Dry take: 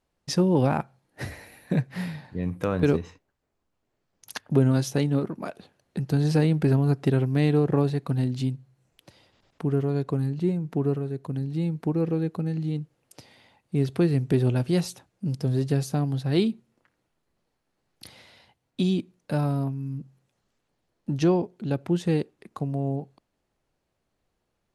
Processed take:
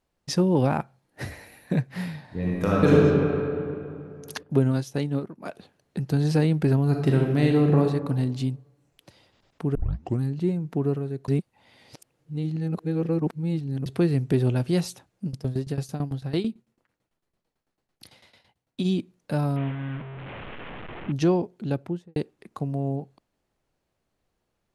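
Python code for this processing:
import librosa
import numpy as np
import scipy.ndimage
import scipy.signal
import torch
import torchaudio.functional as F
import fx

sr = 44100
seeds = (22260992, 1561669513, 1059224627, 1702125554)

y = fx.reverb_throw(x, sr, start_s=2.24, length_s=0.71, rt60_s=2.7, drr_db=-5.5)
y = fx.upward_expand(y, sr, threshold_db=-37.0, expansion=1.5, at=(4.43, 5.45))
y = fx.reverb_throw(y, sr, start_s=6.88, length_s=0.93, rt60_s=1.2, drr_db=1.5)
y = fx.tremolo_shape(y, sr, shape='saw_down', hz=9.0, depth_pct=85, at=(15.26, 18.84), fade=0.02)
y = fx.delta_mod(y, sr, bps=16000, step_db=-32.0, at=(19.56, 21.12))
y = fx.studio_fade_out(y, sr, start_s=21.7, length_s=0.46)
y = fx.edit(y, sr, fx.tape_start(start_s=9.75, length_s=0.46),
    fx.reverse_span(start_s=11.28, length_s=2.58), tone=tone)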